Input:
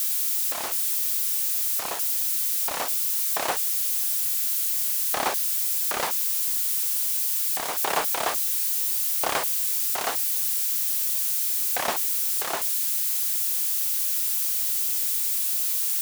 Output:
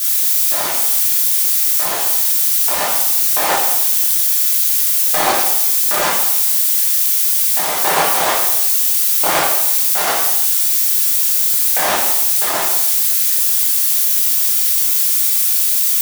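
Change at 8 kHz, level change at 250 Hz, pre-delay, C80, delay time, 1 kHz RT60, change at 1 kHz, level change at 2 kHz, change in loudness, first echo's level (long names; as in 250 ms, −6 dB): +10.5 dB, +11.5 dB, 4 ms, 5.0 dB, no echo audible, 0.85 s, +11.0 dB, +11.0 dB, +10.5 dB, no echo audible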